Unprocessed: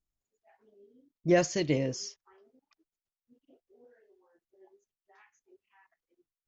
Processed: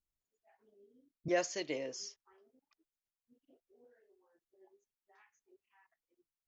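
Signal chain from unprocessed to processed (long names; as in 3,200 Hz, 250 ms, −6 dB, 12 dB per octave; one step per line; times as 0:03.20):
0:01.28–0:01.99: high-pass filter 440 Hz 12 dB per octave
level −5.5 dB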